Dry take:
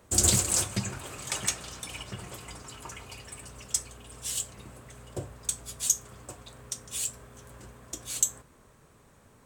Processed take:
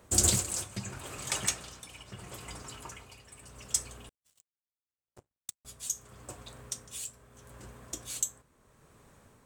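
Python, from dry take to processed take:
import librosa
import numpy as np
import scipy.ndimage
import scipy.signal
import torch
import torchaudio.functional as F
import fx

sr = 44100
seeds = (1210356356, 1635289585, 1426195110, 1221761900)

y = x * (1.0 - 0.66 / 2.0 + 0.66 / 2.0 * np.cos(2.0 * np.pi * 0.77 * (np.arange(len(x)) / sr)))
y = fx.power_curve(y, sr, exponent=3.0, at=(4.09, 5.65))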